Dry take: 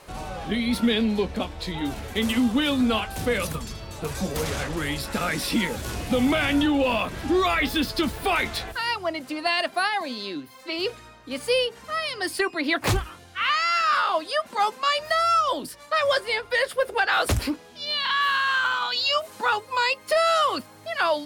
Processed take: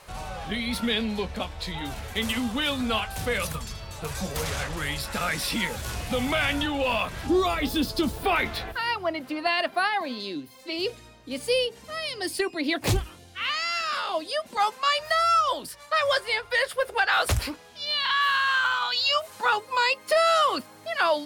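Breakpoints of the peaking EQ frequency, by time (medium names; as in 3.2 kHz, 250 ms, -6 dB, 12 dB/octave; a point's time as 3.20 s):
peaking EQ -9 dB 1.3 oct
300 Hz
from 7.27 s 1.9 kHz
from 8.23 s 7.7 kHz
from 10.20 s 1.3 kHz
from 14.57 s 280 Hz
from 19.45 s 71 Hz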